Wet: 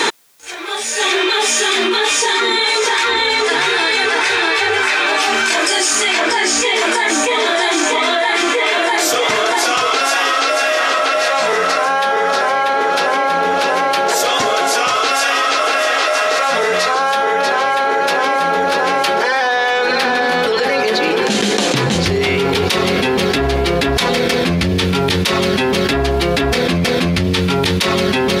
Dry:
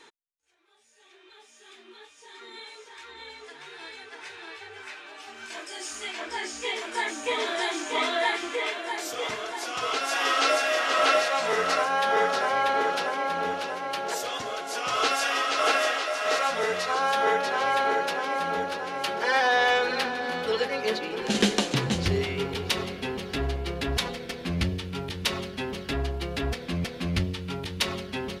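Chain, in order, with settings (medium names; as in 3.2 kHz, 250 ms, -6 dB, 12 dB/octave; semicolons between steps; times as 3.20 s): high-pass 170 Hz 6 dB/octave; band-stop 2.9 kHz, Q 23; level flattener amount 100%; trim +3.5 dB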